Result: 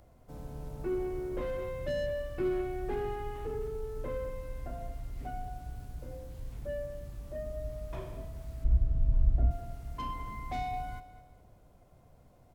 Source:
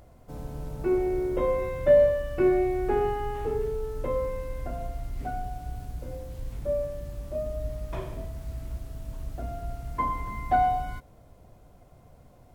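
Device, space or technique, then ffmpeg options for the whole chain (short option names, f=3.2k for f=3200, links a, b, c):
one-band saturation: -filter_complex "[0:a]acrossover=split=340|3700[a][b][c];[b]asoftclip=type=tanh:threshold=-29.5dB[d];[a][d][c]amix=inputs=3:normalize=0,asettb=1/sr,asplit=3[e][f][g];[e]atrim=end=8.644[h];[f]atrim=start=8.64:end=9.51,asetpts=PTS-STARTPTS,afade=t=in:d=0.004:c=qsin,afade=t=out:st=0.866:d=0.004:c=qsin,aemphasis=mode=reproduction:type=riaa[i];[g]atrim=start=9.506[j];[h][i]acrossfade=d=0.004:c1=hsin:c2=qsin[k];[k][j]acrossfade=d=0.004:c1=qsin:c2=hsin,aecho=1:1:211|422|633:0.178|0.064|0.023,volume=-6dB"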